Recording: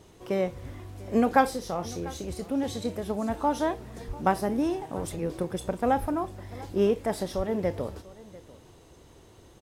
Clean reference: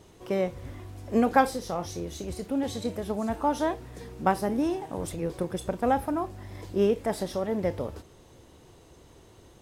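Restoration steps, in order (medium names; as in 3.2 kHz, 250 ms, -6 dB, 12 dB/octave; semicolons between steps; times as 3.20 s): 4.07–4.19 s: high-pass 140 Hz 24 dB/octave; 6.00–6.12 s: high-pass 140 Hz 24 dB/octave; 7.36–7.48 s: high-pass 140 Hz 24 dB/octave; inverse comb 694 ms -20 dB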